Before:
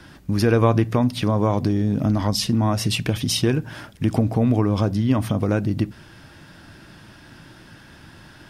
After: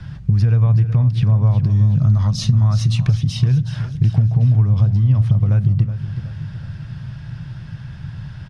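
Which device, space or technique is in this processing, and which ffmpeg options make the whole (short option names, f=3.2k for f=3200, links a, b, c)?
jukebox: -filter_complex "[0:a]lowpass=5.6k,lowshelf=f=200:t=q:w=3:g=13.5,acompressor=threshold=-14dB:ratio=4,asettb=1/sr,asplit=3[a][b][c];[a]atrim=end=1.704[d];[b]atrim=start=1.7:end=3.07,asetpts=PTS-STARTPTS,afade=t=in:d=0.004:c=qsin,afade=t=out:st=1.366:d=0.004:c=qsin,equalizer=f=400:t=o:w=0.33:g=-6,equalizer=f=1.25k:t=o:w=0.33:g=9,equalizer=f=4k:t=o:w=0.33:g=7,equalizer=f=6.3k:t=o:w=0.33:g=10,equalizer=f=10k:t=o:w=0.33:g=9[e];[c]atrim=start=3.066[f];[d][e]acrossfade=d=0.004:c1=hsin:c2=qsin[g];[g][f]acrossfade=d=0.004:c1=qsin:c2=hsin,aecho=1:1:372|744|1116|1488|1860:0.251|0.123|0.0603|0.0296|0.0145"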